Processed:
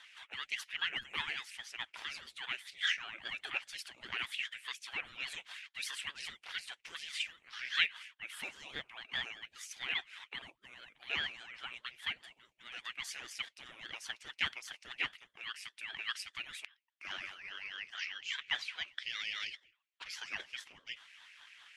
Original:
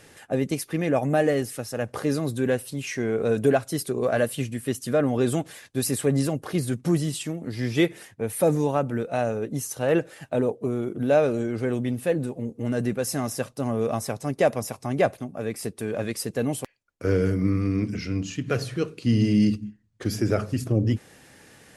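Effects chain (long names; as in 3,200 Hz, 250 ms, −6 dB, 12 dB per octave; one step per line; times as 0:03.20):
four-pole ladder band-pass 2,700 Hz, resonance 70%
ring modulator whose carrier an LFO sweeps 480 Hz, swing 80%, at 4.9 Hz
level +9 dB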